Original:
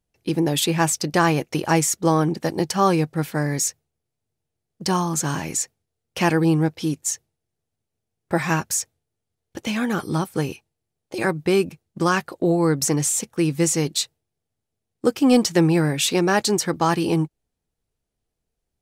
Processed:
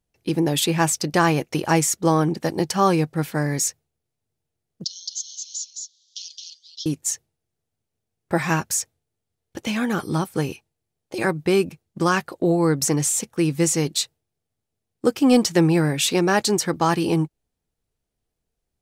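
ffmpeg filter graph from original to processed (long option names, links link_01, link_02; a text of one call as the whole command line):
ffmpeg -i in.wav -filter_complex "[0:a]asettb=1/sr,asplit=3[link_01][link_02][link_03];[link_01]atrim=end=4.844[link_04];[link_02]atrim=start=4.84:end=6.86,asetpts=PTS-STARTPTS,afade=type=in:duration=0.004:curve=qsin,afade=type=out:start_time=2.016:duration=0.004:curve=qsin,acompressor=mode=upward:threshold=-21dB:ratio=2.5:attack=3.2:release=140:knee=2.83:detection=peak,asuperpass=centerf=4800:order=12:qfactor=1.4,aecho=1:1:217:0.668,atrim=end_sample=89082[link_05];[link_03]atrim=start=6.856[link_06];[link_04][link_05]acrossfade=duration=0.004:curve1=hsin:curve2=qsin[link_07];[link_07][link_06]acrossfade=duration=0.004:curve1=qsin:curve2=hsin" out.wav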